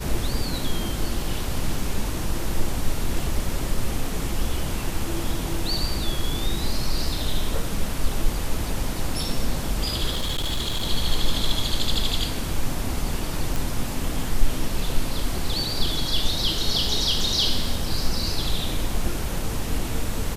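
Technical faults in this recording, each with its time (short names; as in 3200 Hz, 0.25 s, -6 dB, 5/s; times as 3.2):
10.11–10.87 clipped -20.5 dBFS
13.56 pop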